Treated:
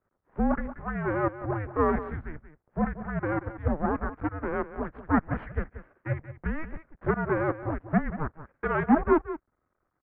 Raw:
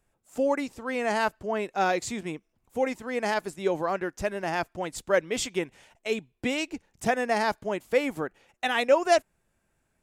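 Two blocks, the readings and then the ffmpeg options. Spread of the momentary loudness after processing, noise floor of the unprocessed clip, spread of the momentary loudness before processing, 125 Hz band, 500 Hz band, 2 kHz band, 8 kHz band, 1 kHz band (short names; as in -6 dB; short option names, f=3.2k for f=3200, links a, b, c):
13 LU, -75 dBFS, 10 LU, +11.5 dB, -4.0 dB, -4.5 dB, under -40 dB, -2.0 dB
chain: -af "aecho=1:1:182:0.224,aeval=exprs='max(val(0),0)':c=same,highpass=f=230:t=q:w=0.5412,highpass=f=230:t=q:w=1.307,lowpass=f=2k:t=q:w=0.5176,lowpass=f=2k:t=q:w=0.7071,lowpass=f=2k:t=q:w=1.932,afreqshift=-310,volume=5dB"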